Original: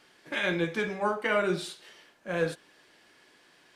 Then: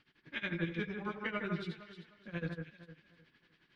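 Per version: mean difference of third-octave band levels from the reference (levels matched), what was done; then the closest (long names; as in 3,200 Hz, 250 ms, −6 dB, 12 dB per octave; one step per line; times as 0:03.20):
7.5 dB: guitar amp tone stack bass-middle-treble 6-0-2
amplitude tremolo 11 Hz, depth 89%
high-frequency loss of the air 310 metres
delay that swaps between a low-pass and a high-pass 153 ms, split 1,900 Hz, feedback 53%, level −4.5 dB
level +16.5 dB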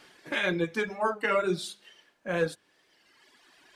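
4.0 dB: reverb reduction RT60 1.7 s
hum removal 102.3 Hz, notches 2
in parallel at −2 dB: downward compressor, threshold −39 dBFS, peak gain reduction 15.5 dB
on the sum: wow of a warped record 33 1/3 rpm, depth 100 cents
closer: second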